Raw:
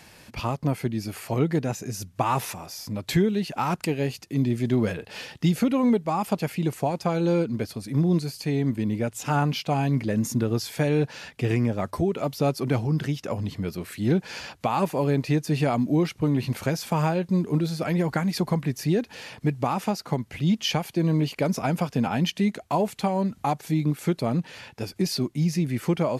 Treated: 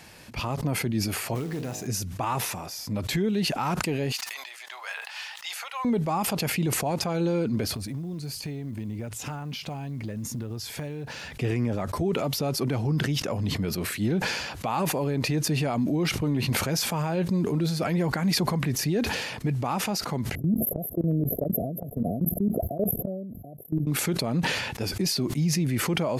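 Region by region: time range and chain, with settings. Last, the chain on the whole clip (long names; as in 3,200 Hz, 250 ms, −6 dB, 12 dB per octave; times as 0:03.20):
0:01.35–0:01.87: hum removal 52.5 Hz, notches 23 + downward compressor 5 to 1, threshold −30 dBFS + floating-point word with a short mantissa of 2 bits
0:04.12–0:05.85: Butterworth high-pass 800 Hz + high-shelf EQ 8,300 Hz −5.5 dB + log-companded quantiser 8 bits
0:07.72–0:11.38: downward compressor 16 to 1, threshold −33 dBFS + floating-point word with a short mantissa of 4 bits + parametric band 76 Hz +7.5 dB 1.7 octaves
0:20.35–0:23.87: linear-phase brick-wall band-stop 730–11,000 Hz + high-shelf EQ 12,000 Hz +9.5 dB + output level in coarse steps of 22 dB
whole clip: brickwall limiter −19 dBFS; level that may fall only so fast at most 37 dB per second; level +1 dB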